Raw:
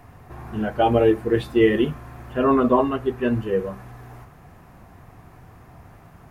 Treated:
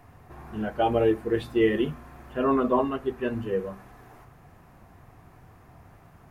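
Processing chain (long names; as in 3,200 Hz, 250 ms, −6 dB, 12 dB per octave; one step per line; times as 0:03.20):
mains-hum notches 60/120/180/240 Hz
level −5 dB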